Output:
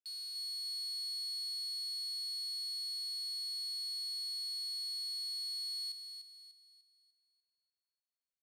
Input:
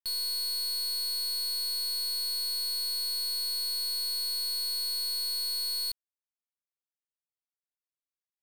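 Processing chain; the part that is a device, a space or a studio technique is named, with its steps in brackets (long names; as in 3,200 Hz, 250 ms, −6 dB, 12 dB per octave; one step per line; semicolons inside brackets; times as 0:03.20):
0:01.07–0:02.96: low-shelf EQ 430 Hz −9.5 dB
piezo pickup straight into a mixer (low-pass filter 5,800 Hz 12 dB per octave; first difference)
feedback echo with a high-pass in the loop 297 ms, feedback 40%, high-pass 510 Hz, level −7.5 dB
level −5.5 dB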